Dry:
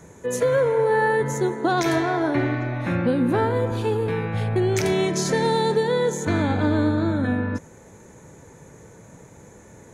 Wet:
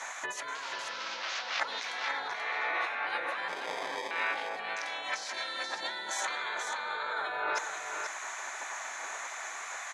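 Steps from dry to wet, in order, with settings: 0.55–1.60 s: one-bit delta coder 32 kbps, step -22 dBFS; spectral gate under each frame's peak -15 dB weak; compressor with a negative ratio -43 dBFS, ratio -1; 3.48–4.11 s: sample-rate reducer 1.4 kHz, jitter 0%; band-pass 730–5000 Hz; on a send: delay 483 ms -6.5 dB; on the sum: trim +9 dB

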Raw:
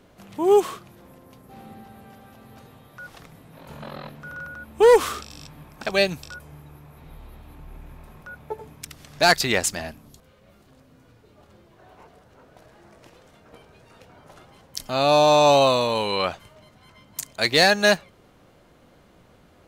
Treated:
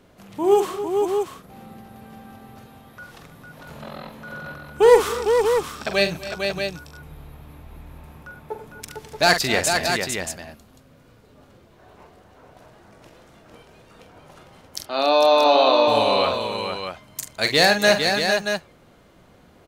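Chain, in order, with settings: 14.81–15.88 s: elliptic band-pass 290–4500 Hz, stop band 40 dB; multi-tap echo 45/248/282/453/630 ms -8.5/-19.5/-16.5/-5.5/-7 dB

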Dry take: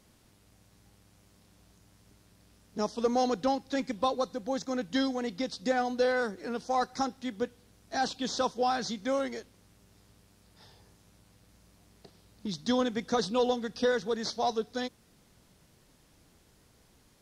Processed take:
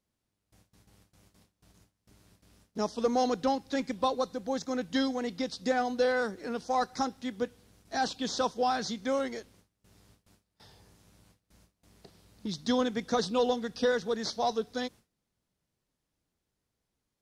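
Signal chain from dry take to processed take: gate with hold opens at -49 dBFS

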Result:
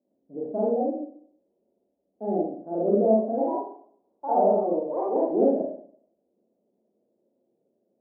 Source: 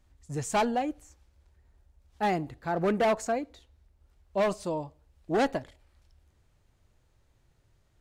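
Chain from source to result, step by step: Chebyshev band-pass 220–630 Hz, order 3; 3.16–5.51 s: ever faster or slower copies 113 ms, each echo +3 st, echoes 2; reverberation RT60 0.60 s, pre-delay 32 ms, DRR -6 dB

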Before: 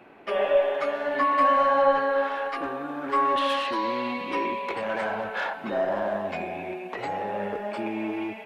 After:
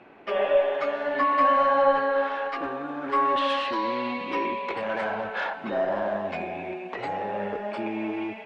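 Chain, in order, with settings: low-pass 5.7 kHz 12 dB/octave

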